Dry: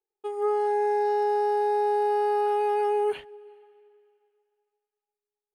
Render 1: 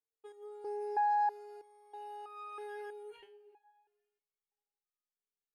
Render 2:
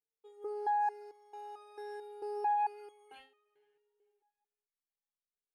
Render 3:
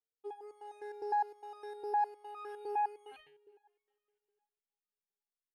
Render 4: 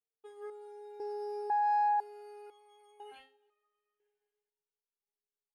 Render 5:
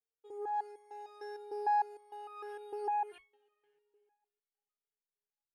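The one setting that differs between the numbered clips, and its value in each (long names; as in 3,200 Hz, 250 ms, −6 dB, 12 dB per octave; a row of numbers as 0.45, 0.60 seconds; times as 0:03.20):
step-sequenced resonator, speed: 3.1, 4.5, 9.8, 2, 6.6 Hertz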